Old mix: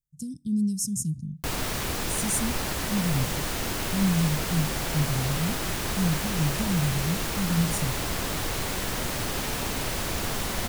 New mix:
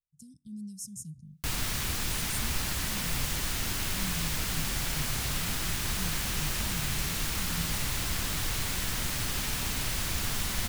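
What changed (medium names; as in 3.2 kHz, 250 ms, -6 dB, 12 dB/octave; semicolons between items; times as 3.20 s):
speech -11.0 dB; master: add peaking EQ 500 Hz -11 dB 2.3 oct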